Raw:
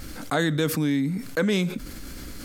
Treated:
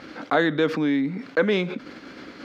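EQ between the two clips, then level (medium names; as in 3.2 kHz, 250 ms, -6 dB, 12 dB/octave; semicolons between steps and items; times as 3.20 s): high-pass 310 Hz 12 dB/octave; distance through air 240 m; treble shelf 9.1 kHz -9.5 dB; +6.0 dB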